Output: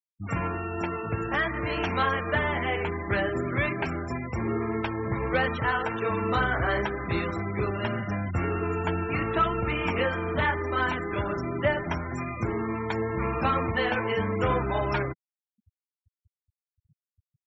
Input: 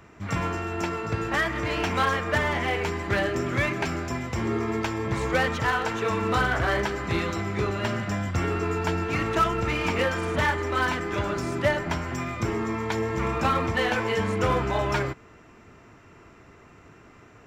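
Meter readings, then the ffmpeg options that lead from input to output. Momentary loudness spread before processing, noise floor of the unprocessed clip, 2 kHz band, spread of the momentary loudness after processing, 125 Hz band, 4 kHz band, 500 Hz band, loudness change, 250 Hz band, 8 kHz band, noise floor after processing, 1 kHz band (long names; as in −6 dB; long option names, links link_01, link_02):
5 LU, −52 dBFS, −2.0 dB, 5 LU, −1.5 dB, −4.5 dB, −1.5 dB, −1.5 dB, −1.5 dB, below −15 dB, below −85 dBFS, −1.5 dB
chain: -af "highshelf=frequency=10000:gain=-3.5,afftfilt=real='re*gte(hypot(re,im),0.0282)':imag='im*gte(hypot(re,im),0.0282)':win_size=1024:overlap=0.75,volume=-1.5dB"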